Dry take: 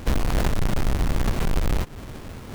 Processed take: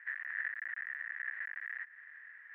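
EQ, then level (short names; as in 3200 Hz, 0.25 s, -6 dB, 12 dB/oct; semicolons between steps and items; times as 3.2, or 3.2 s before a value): Butterworth band-pass 1800 Hz, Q 6.8; air absorption 230 m; +8.0 dB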